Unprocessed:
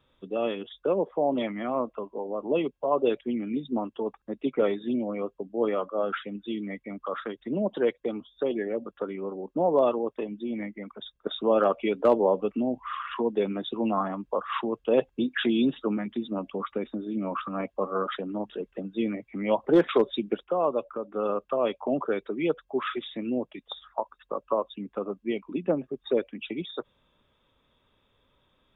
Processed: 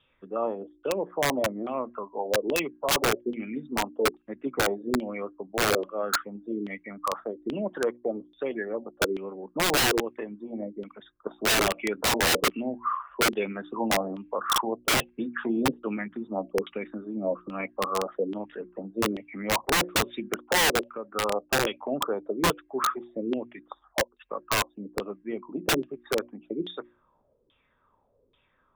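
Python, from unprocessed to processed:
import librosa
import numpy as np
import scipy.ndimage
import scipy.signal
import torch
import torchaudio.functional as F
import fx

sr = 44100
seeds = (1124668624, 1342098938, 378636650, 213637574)

y = fx.hum_notches(x, sr, base_hz=60, count=6)
y = fx.filter_lfo_lowpass(y, sr, shape='saw_down', hz=1.2, low_hz=360.0, high_hz=3200.0, q=4.9)
y = (np.mod(10.0 ** (13.5 / 20.0) * y + 1.0, 2.0) - 1.0) / 10.0 ** (13.5 / 20.0)
y = F.gain(torch.from_numpy(y), -3.5).numpy()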